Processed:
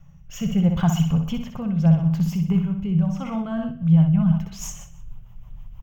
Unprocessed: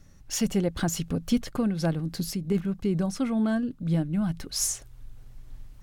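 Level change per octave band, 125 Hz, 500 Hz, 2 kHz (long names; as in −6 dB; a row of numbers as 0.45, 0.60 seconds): +11.0 dB, −3.0 dB, can't be measured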